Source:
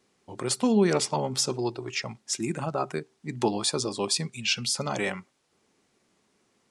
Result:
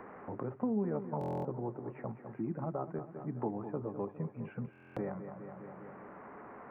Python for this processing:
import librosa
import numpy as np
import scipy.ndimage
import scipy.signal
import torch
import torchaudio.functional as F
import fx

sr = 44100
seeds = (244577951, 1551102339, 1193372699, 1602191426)

p1 = x + 0.5 * 10.0 ** (-27.5 / 20.0) * np.diff(np.sign(x), prepend=np.sign(x[:1]))
p2 = scipy.ndimage.gaussian_filter1d(p1, 7.4, mode='constant')
p3 = fx.notch(p2, sr, hz=370.0, q=12.0)
p4 = p3 + fx.echo_feedback(p3, sr, ms=204, feedback_pct=51, wet_db=-12.0, dry=0)
p5 = fx.buffer_glitch(p4, sr, at_s=(1.19, 4.71), block=1024, repeats=10)
p6 = fx.band_squash(p5, sr, depth_pct=70)
y = F.gain(torch.from_numpy(p6), -6.5).numpy()